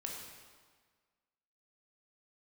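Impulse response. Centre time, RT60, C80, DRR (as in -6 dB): 68 ms, 1.6 s, 3.5 dB, -1.0 dB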